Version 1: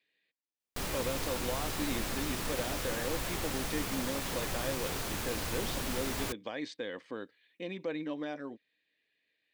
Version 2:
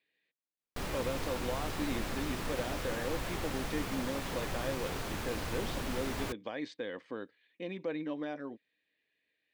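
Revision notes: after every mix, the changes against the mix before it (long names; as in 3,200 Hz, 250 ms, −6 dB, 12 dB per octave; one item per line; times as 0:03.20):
master: add high-shelf EQ 4,300 Hz −9 dB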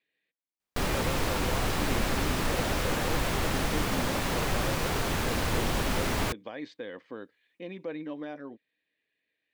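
speech: add high-frequency loss of the air 60 metres
background +9.0 dB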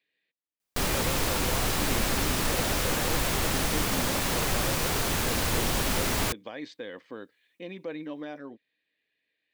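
master: add high-shelf EQ 4,300 Hz +9 dB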